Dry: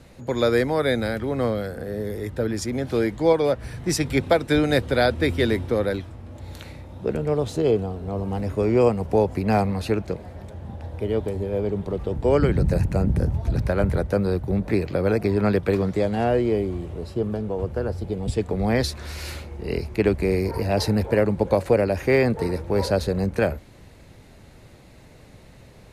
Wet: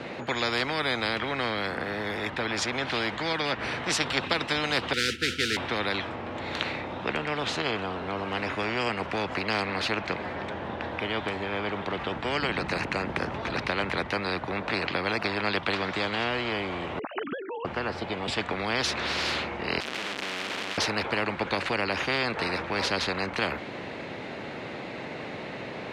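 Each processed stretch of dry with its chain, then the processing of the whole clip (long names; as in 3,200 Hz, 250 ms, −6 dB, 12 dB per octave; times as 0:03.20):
0:04.93–0:05.57: downward expander −23 dBFS + noise that follows the level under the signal 15 dB + linear-phase brick-wall band-stop 510–1,300 Hz
0:16.99–0:17.65: three sine waves on the formant tracks + downward expander −52 dBFS
0:19.80–0:20.78: sign of each sample alone + guitar amp tone stack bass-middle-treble 10-0-1 + every bin compressed towards the loudest bin 4 to 1
whole clip: Chebyshev band-pass filter 270–2,800 Hz, order 2; every bin compressed towards the loudest bin 4 to 1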